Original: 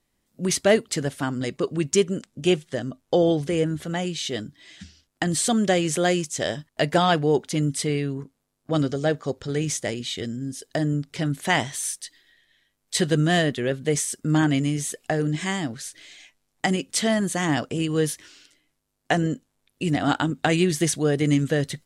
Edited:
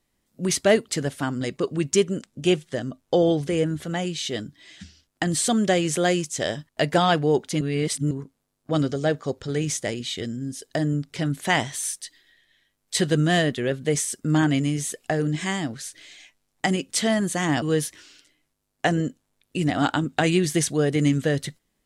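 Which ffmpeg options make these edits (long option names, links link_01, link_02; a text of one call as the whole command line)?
ffmpeg -i in.wav -filter_complex "[0:a]asplit=4[link_01][link_02][link_03][link_04];[link_01]atrim=end=7.612[link_05];[link_02]atrim=start=7.608:end=8.112,asetpts=PTS-STARTPTS,areverse[link_06];[link_03]atrim=start=8.108:end=17.622[link_07];[link_04]atrim=start=17.878[link_08];[link_05][link_06]acrossfade=duration=0.004:curve1=hsin:curve2=hsin[link_09];[link_09][link_07]acrossfade=duration=0.004:curve1=hsin:curve2=hsin[link_10];[link_10][link_08]acrossfade=duration=0.004:curve1=hsin:curve2=hsin" out.wav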